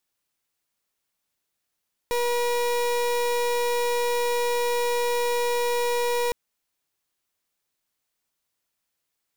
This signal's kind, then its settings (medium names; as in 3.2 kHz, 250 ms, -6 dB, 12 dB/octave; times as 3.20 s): pulse 481 Hz, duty 31% -24 dBFS 4.21 s